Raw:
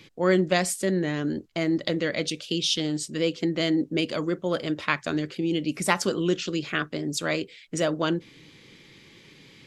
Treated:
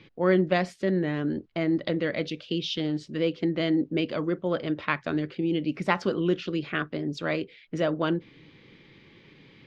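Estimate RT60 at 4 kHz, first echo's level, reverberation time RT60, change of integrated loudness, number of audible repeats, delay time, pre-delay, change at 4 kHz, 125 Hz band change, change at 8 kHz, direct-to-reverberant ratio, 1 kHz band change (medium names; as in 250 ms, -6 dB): no reverb, no echo, no reverb, -1.5 dB, no echo, no echo, no reverb, -6.5 dB, 0.0 dB, under -15 dB, no reverb, -1.0 dB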